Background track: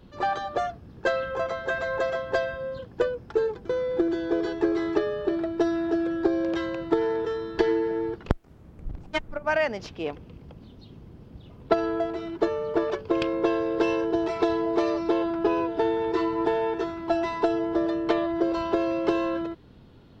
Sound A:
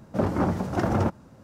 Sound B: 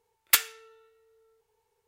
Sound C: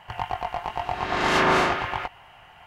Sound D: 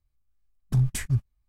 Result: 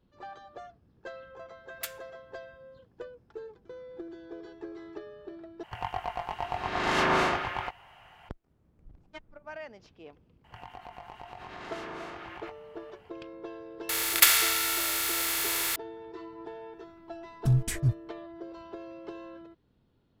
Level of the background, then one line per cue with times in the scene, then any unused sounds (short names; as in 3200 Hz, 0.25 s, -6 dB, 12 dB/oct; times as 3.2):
background track -18 dB
1.5 add B -17 dB
5.63 replace with C -5 dB
10.44 add C -11.5 dB + compressor, threshold -28 dBFS
13.89 add B -0.5 dB + per-bin compression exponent 0.2
16.73 add D -1.5 dB
not used: A